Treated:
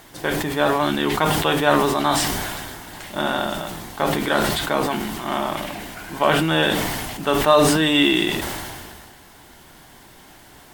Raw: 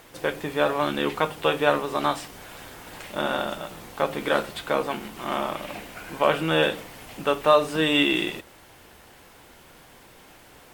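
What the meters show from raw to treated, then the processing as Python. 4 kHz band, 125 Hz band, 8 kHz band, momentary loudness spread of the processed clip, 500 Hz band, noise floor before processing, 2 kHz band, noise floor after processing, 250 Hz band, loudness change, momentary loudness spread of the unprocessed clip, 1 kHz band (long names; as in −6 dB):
+6.0 dB, +9.0 dB, +14.0 dB, 16 LU, +3.0 dB, −51 dBFS, +4.5 dB, −47 dBFS, +7.0 dB, +4.5 dB, 18 LU, +5.0 dB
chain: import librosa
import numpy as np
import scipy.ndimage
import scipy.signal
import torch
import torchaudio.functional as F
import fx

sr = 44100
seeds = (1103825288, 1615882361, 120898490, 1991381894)

y = fx.graphic_eq_31(x, sr, hz=(500, 1250, 2500), db=(-10, -4, -6))
y = fx.sustainer(y, sr, db_per_s=28.0)
y = y * 10.0 ** (5.0 / 20.0)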